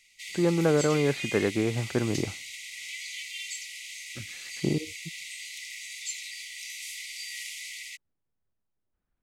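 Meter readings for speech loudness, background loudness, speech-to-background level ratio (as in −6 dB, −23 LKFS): −27.5 LKFS, −36.5 LKFS, 9.0 dB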